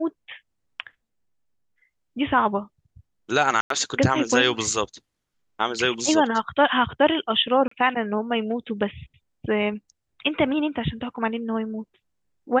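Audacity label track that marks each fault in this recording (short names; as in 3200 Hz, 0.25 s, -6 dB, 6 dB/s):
3.610000	3.700000	gap 93 ms
7.680000	7.710000	gap 34 ms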